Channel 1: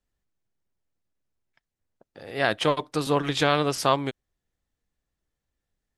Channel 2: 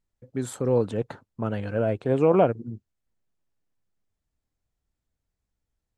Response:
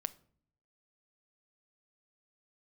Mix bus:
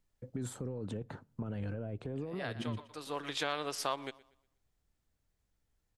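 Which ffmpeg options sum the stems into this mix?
-filter_complex "[0:a]highpass=f=510:p=1,volume=0.447,asplit=2[s0][s1];[s1]volume=0.0668[s2];[1:a]acompressor=threshold=0.0562:ratio=6,alimiter=level_in=1.88:limit=0.0631:level=0:latency=1:release=28,volume=0.531,acrossover=split=330[s3][s4];[s4]acompressor=threshold=0.00398:ratio=4[s5];[s3][s5]amix=inputs=2:normalize=0,volume=0.891,asplit=3[s6][s7][s8];[s7]volume=0.447[s9];[s8]apad=whole_len=263557[s10];[s0][s10]sidechaincompress=threshold=0.00447:ratio=8:attack=24:release=744[s11];[2:a]atrim=start_sample=2205[s12];[s9][s12]afir=irnorm=-1:irlink=0[s13];[s2]aecho=0:1:120|240|360|480|600:1|0.33|0.109|0.0359|0.0119[s14];[s11][s6][s13][s14]amix=inputs=4:normalize=0,acompressor=threshold=0.0224:ratio=2"

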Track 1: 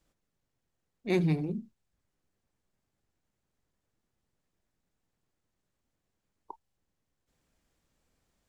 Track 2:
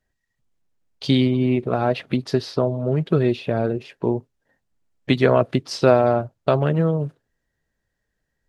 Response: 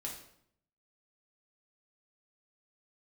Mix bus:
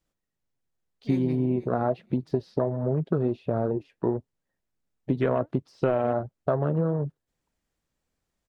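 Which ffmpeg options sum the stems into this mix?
-filter_complex "[0:a]volume=0.562,asplit=2[s0][s1];[s1]volume=0.0944[s2];[1:a]deesser=0.85,afwtdn=0.0316,flanger=delay=0.7:depth=3.7:regen=80:speed=1.4:shape=triangular,volume=1.26[s3];[s2]aecho=0:1:485|970|1455:1|0.17|0.0289[s4];[s0][s3][s4]amix=inputs=3:normalize=0,acompressor=threshold=0.1:ratio=6"

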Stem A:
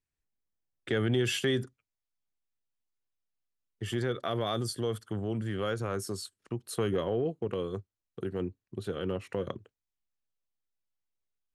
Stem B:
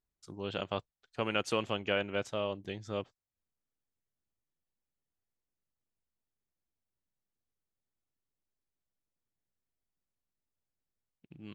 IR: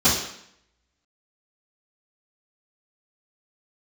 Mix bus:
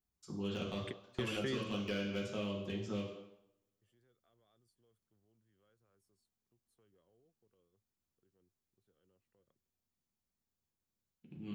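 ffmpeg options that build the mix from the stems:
-filter_complex "[0:a]volume=0.668[s0];[1:a]asoftclip=type=hard:threshold=0.0531,volume=0.501,asplit=3[s1][s2][s3];[s2]volume=0.178[s4];[s3]apad=whole_len=509122[s5];[s0][s5]sidechaingate=range=0.01:threshold=0.00158:ratio=16:detection=peak[s6];[2:a]atrim=start_sample=2205[s7];[s4][s7]afir=irnorm=-1:irlink=0[s8];[s6][s1][s8]amix=inputs=3:normalize=0,highshelf=f=10000:g=6.5,acrossover=split=550|1600|3700[s9][s10][s11][s12];[s9]acompressor=threshold=0.0158:ratio=4[s13];[s10]acompressor=threshold=0.002:ratio=4[s14];[s11]acompressor=threshold=0.00708:ratio=4[s15];[s12]acompressor=threshold=0.00112:ratio=4[s16];[s13][s14][s15][s16]amix=inputs=4:normalize=0"

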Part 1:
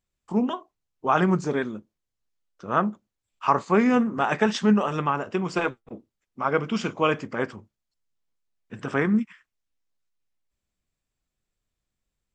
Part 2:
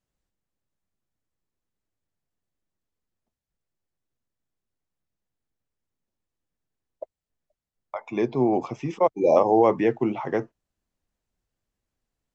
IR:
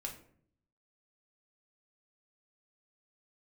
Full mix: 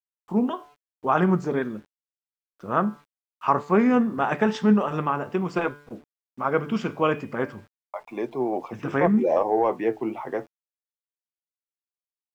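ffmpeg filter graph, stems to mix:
-filter_complex "[0:a]bandreject=f=145.6:t=h:w=4,bandreject=f=291.2:t=h:w=4,bandreject=f=436.8:t=h:w=4,bandreject=f=582.4:t=h:w=4,bandreject=f=728:t=h:w=4,bandreject=f=873.6:t=h:w=4,bandreject=f=1019.2:t=h:w=4,bandreject=f=1164.8:t=h:w=4,bandreject=f=1310.4:t=h:w=4,bandreject=f=1456:t=h:w=4,bandreject=f=1601.6:t=h:w=4,bandreject=f=1747.2:t=h:w=4,bandreject=f=1892.8:t=h:w=4,bandreject=f=2038.4:t=h:w=4,bandreject=f=2184:t=h:w=4,bandreject=f=2329.6:t=h:w=4,bandreject=f=2475.2:t=h:w=4,bandreject=f=2620.8:t=h:w=4,bandreject=f=2766.4:t=h:w=4,bandreject=f=2912:t=h:w=4,bandreject=f=3057.6:t=h:w=4,bandreject=f=3203.2:t=h:w=4,bandreject=f=3348.8:t=h:w=4,bandreject=f=3494.4:t=h:w=4,bandreject=f=3640:t=h:w=4,bandreject=f=3785.6:t=h:w=4,bandreject=f=3931.2:t=h:w=4,bandreject=f=4076.8:t=h:w=4,bandreject=f=4222.4:t=h:w=4,bandreject=f=4368:t=h:w=4,bandreject=f=4513.6:t=h:w=4,bandreject=f=4659.2:t=h:w=4,bandreject=f=4804.8:t=h:w=4,bandreject=f=4950.4:t=h:w=4,bandreject=f=5096:t=h:w=4,bandreject=f=5241.6:t=h:w=4,bandreject=f=5387.2:t=h:w=4,bandreject=f=5532.8:t=h:w=4,volume=1.12[s0];[1:a]highpass=f=420:p=1,acontrast=55,flanger=delay=1.6:depth=7.9:regen=73:speed=0.35:shape=triangular,volume=0.794[s1];[s0][s1]amix=inputs=2:normalize=0,acrusher=bits=8:mix=0:aa=0.000001,highshelf=f=3000:g=-11"

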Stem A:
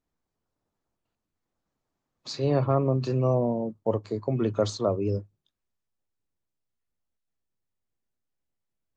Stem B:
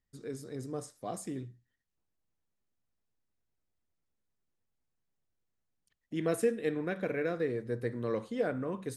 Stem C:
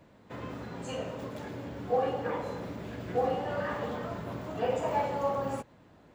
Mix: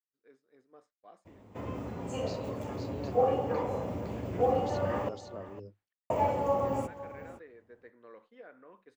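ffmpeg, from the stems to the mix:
-filter_complex "[0:a]volume=0.299,asplit=2[s0][s1];[s1]volume=0.422[s2];[1:a]lowpass=2100,acompressor=mode=upward:threshold=0.00794:ratio=2.5,volume=0.355[s3];[2:a]equalizer=f=100:t=o:w=0.67:g=10,equalizer=f=1600:t=o:w=0.67:g=-9,equalizer=f=4000:t=o:w=0.67:g=-11,equalizer=f=10000:t=o:w=0.67:g=-5,adelay=1250,volume=1.33,asplit=3[s4][s5][s6];[s4]atrim=end=5.09,asetpts=PTS-STARTPTS,afade=t=out:st=5.086:d=0.004:c=hsin[s7];[s5]atrim=start=5.09:end=6.1,asetpts=PTS-STARTPTS,volume=0[s8];[s6]atrim=start=6.1,asetpts=PTS-STARTPTS,afade=t=in:d=0.004:c=hsin[s9];[s7][s8][s9]concat=n=3:v=0:a=1,asplit=2[s10][s11];[s11]volume=0.168[s12];[s0][s3]amix=inputs=2:normalize=0,highpass=f=1200:p=1,acompressor=threshold=0.00562:ratio=6,volume=1[s13];[s2][s12]amix=inputs=2:normalize=0,aecho=0:1:508:1[s14];[s10][s13][s14]amix=inputs=3:normalize=0,agate=range=0.0224:threshold=0.00141:ratio=3:detection=peak,equalizer=f=130:t=o:w=0.61:g=-8.5"

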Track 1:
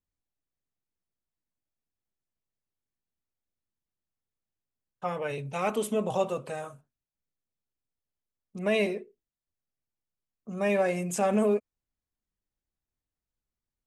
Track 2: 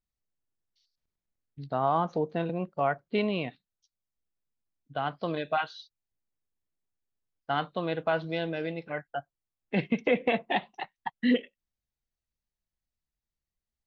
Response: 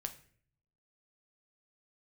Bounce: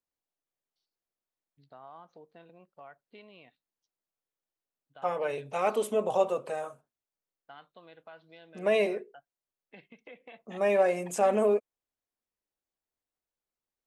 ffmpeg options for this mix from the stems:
-filter_complex "[0:a]equalizer=f=490:t=o:w=2.6:g=9.5,volume=0.668[s0];[1:a]acompressor=threshold=0.0158:ratio=2,volume=0.224[s1];[s0][s1]amix=inputs=2:normalize=0,lowshelf=f=350:g=-11.5"

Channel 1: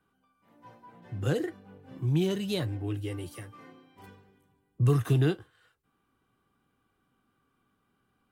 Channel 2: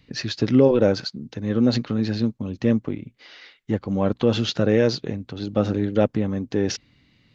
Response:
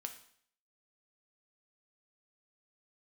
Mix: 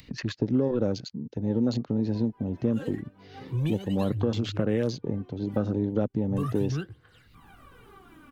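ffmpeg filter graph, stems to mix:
-filter_complex "[0:a]bass=f=250:g=3,treble=f=4000:g=-11,aphaser=in_gain=1:out_gain=1:delay=3.9:decay=0.76:speed=0.36:type=triangular,adelay=1500,volume=1.26[s0];[1:a]afwtdn=0.0251,volume=0.944,asplit=2[s1][s2];[s2]apad=whole_len=432910[s3];[s0][s3]sidechaincompress=threshold=0.0447:ratio=6:attack=12:release=874[s4];[s4][s1]amix=inputs=2:normalize=0,acrossover=split=320|2200|5500[s5][s6][s7][s8];[s5]acompressor=threshold=0.0562:ratio=4[s9];[s6]acompressor=threshold=0.0316:ratio=4[s10];[s7]acompressor=threshold=0.00355:ratio=4[s11];[s8]acompressor=threshold=0.002:ratio=4[s12];[s9][s10][s11][s12]amix=inputs=4:normalize=0,highshelf=f=5900:g=7,acompressor=mode=upward:threshold=0.0158:ratio=2.5"

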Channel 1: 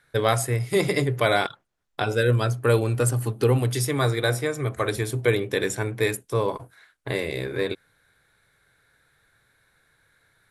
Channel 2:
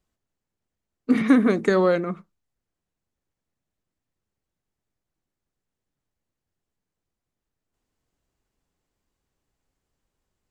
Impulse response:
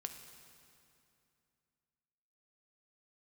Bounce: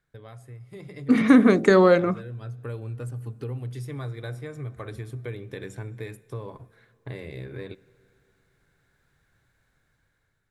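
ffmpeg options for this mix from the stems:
-filter_complex "[0:a]bass=f=250:g=9,treble=f=4000:g=-7,acompressor=threshold=0.0355:ratio=2.5,volume=0.112,asplit=2[s0][s1];[s1]volume=0.376[s2];[1:a]bandreject=f=68.31:t=h:w=4,bandreject=f=136.62:t=h:w=4,bandreject=f=204.93:t=h:w=4,bandreject=f=273.24:t=h:w=4,bandreject=f=341.55:t=h:w=4,bandreject=f=409.86:t=h:w=4,bandreject=f=478.17:t=h:w=4,bandreject=f=546.48:t=h:w=4,bandreject=f=614.79:t=h:w=4,bandreject=f=683.1:t=h:w=4,bandreject=f=751.41:t=h:w=4,volume=0.562,asplit=2[s3][s4];[s4]apad=whole_len=463098[s5];[s0][s5]sidechaincompress=threshold=0.0224:ratio=8:attack=44:release=734[s6];[2:a]atrim=start_sample=2205[s7];[s2][s7]afir=irnorm=-1:irlink=0[s8];[s6][s3][s8]amix=inputs=3:normalize=0,dynaudnorm=f=430:g=5:m=3.16"

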